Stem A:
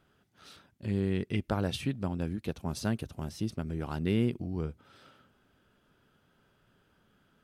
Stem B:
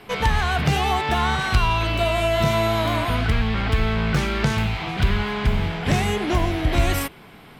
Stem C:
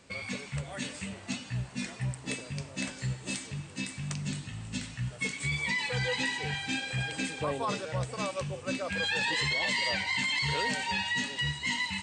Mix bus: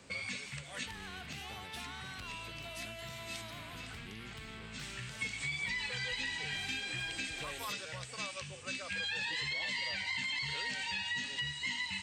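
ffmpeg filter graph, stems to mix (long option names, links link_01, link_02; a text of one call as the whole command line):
ffmpeg -i stem1.wav -i stem2.wav -i stem3.wav -filter_complex "[0:a]highshelf=frequency=8900:gain=11.5,volume=-13.5dB,asplit=2[link_01][link_02];[1:a]asoftclip=type=tanh:threshold=-11.5dB,adelay=650,volume=-17.5dB[link_03];[2:a]acrossover=split=5900[link_04][link_05];[link_05]acompressor=threshold=-50dB:ratio=4:attack=1:release=60[link_06];[link_04][link_06]amix=inputs=2:normalize=0,volume=1dB[link_07];[link_02]apad=whole_len=530438[link_08];[link_07][link_08]sidechaincompress=threshold=-54dB:ratio=8:attack=7.9:release=259[link_09];[link_01][link_03][link_09]amix=inputs=3:normalize=0,acrossover=split=96|1600[link_10][link_11][link_12];[link_10]acompressor=threshold=-59dB:ratio=4[link_13];[link_11]acompressor=threshold=-50dB:ratio=4[link_14];[link_12]acompressor=threshold=-36dB:ratio=4[link_15];[link_13][link_14][link_15]amix=inputs=3:normalize=0" out.wav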